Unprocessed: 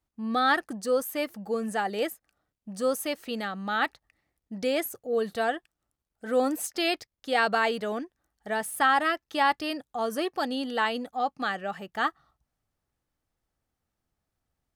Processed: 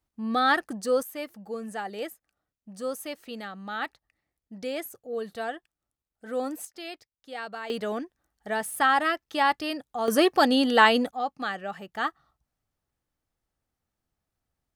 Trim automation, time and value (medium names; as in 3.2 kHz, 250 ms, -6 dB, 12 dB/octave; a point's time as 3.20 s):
+1 dB
from 1.03 s -5.5 dB
from 6.65 s -12.5 dB
from 7.70 s +0.5 dB
from 10.08 s +9 dB
from 11.11 s -1.5 dB